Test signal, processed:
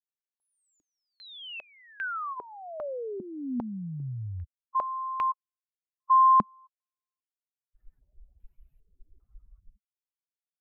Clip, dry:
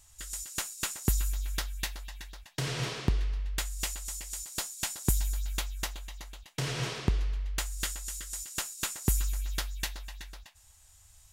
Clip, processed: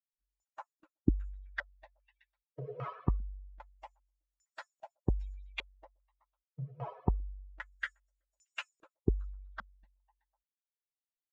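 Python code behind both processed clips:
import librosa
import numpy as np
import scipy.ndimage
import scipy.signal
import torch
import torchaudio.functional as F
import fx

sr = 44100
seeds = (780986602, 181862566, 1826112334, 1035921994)

y = fx.bin_expand(x, sr, power=3.0)
y = fx.filter_held_lowpass(y, sr, hz=2.5, low_hz=210.0, high_hz=2500.0)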